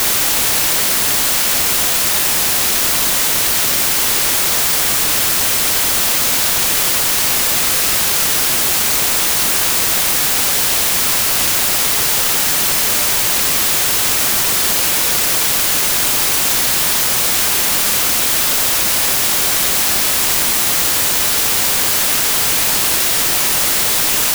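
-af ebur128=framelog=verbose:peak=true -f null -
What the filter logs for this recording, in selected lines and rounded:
Integrated loudness:
  I:         -11.7 LUFS
  Threshold: -21.7 LUFS
Loudness range:
  LRA:         0.0 LU
  Threshold: -31.7 LUFS
  LRA low:   -11.8 LUFS
  LRA high:  -11.7 LUFS
True peak:
  Peak:       -1.1 dBFS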